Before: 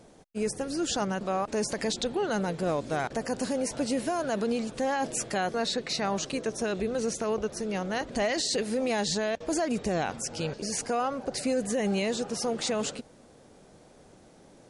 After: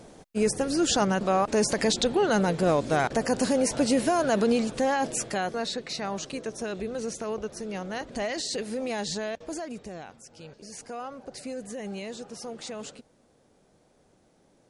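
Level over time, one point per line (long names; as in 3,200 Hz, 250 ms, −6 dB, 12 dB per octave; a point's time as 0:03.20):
0:04.55 +5.5 dB
0:05.85 −3 dB
0:09.27 −3 dB
0:10.24 −15.5 dB
0:11.00 −8.5 dB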